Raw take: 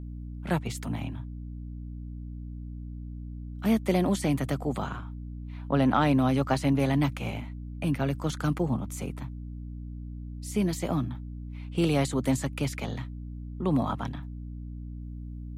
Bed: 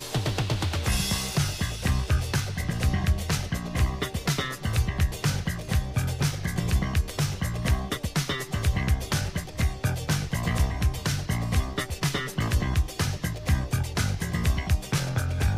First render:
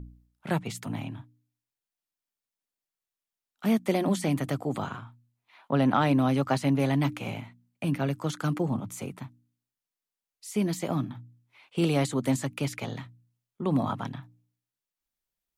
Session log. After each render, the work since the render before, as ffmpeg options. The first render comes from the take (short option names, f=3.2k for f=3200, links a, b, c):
-af "bandreject=f=60:t=h:w=4,bandreject=f=120:t=h:w=4,bandreject=f=180:t=h:w=4,bandreject=f=240:t=h:w=4,bandreject=f=300:t=h:w=4"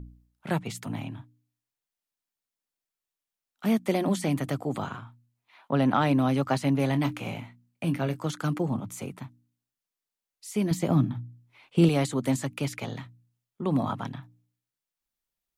-filter_complex "[0:a]asettb=1/sr,asplit=3[a][b][c];[a]atrim=end=6.884[d];[b]atrim=start=6.88:end=8.27,asetpts=PTS-STARTPTS,afade=t=in:d=0.004:c=qsin,afade=t=out:st=1.386:d=0.004:c=qsin,asplit=2[e][f];[f]adelay=24,volume=-11dB[g];[e][g]amix=inputs=2:normalize=0,atrim=end_sample=61299[h];[c]atrim=start=8.266[i];[d][h]acrossfade=d=0.004:c1=hsin:c2=qsin[j];[j][i]acrossfade=d=0.004:c1=qsin:c2=hsin,asettb=1/sr,asplit=3[k][l][m];[k]atrim=end=10.714[n];[l]atrim=start=10.71:end=11.89,asetpts=PTS-STARTPTS,afade=t=in:d=0.004:c=qsin,afade=t=out:st=1.176:d=0.004:c=qsin,lowshelf=f=330:g=9.5[o];[m]atrim=start=11.886[p];[n][o]acrossfade=d=0.004:c1=hsin:c2=qsin[q];[q][p]acrossfade=d=0.004:c1=qsin:c2=hsin"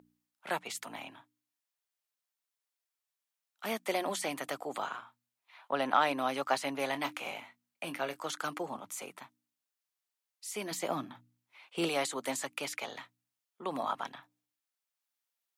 -af "highpass=620"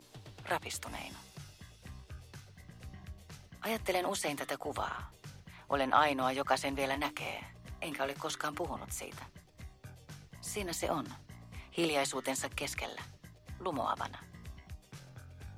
-filter_complex "[1:a]volume=-24.5dB[a];[0:a][a]amix=inputs=2:normalize=0"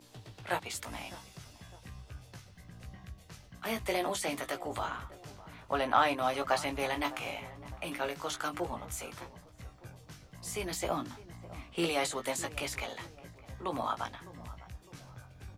-filter_complex "[0:a]asplit=2[a][b];[b]adelay=17,volume=-6dB[c];[a][c]amix=inputs=2:normalize=0,asplit=2[d][e];[e]adelay=607,lowpass=f=1.2k:p=1,volume=-16.5dB,asplit=2[f][g];[g]adelay=607,lowpass=f=1.2k:p=1,volume=0.53,asplit=2[h][i];[i]adelay=607,lowpass=f=1.2k:p=1,volume=0.53,asplit=2[j][k];[k]adelay=607,lowpass=f=1.2k:p=1,volume=0.53,asplit=2[l][m];[m]adelay=607,lowpass=f=1.2k:p=1,volume=0.53[n];[d][f][h][j][l][n]amix=inputs=6:normalize=0"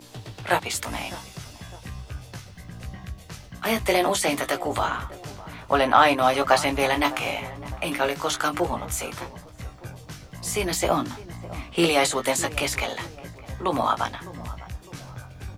-af "volume=11dB,alimiter=limit=-3dB:level=0:latency=1"